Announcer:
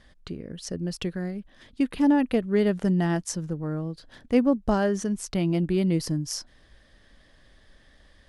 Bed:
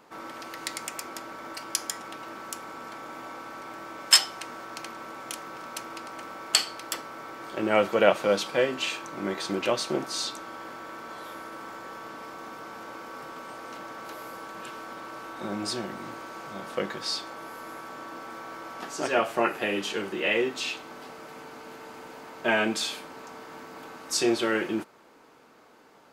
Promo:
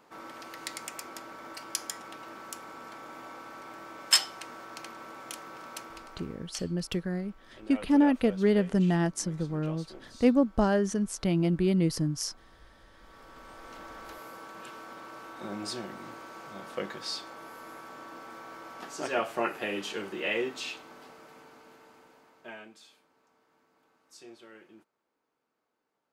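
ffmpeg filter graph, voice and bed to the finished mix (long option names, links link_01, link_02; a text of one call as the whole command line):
ffmpeg -i stem1.wav -i stem2.wav -filter_complex "[0:a]adelay=5900,volume=-1.5dB[link_01];[1:a]volume=11dB,afade=type=out:start_time=5.75:duration=0.77:silence=0.158489,afade=type=in:start_time=12.94:duration=0.93:silence=0.16788,afade=type=out:start_time=20.45:duration=2.26:silence=0.0891251[link_02];[link_01][link_02]amix=inputs=2:normalize=0" out.wav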